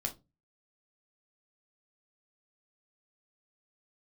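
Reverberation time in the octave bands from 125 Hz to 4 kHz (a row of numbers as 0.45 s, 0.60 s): 0.50 s, 0.35 s, 0.25 s, 0.20 s, 0.15 s, 0.15 s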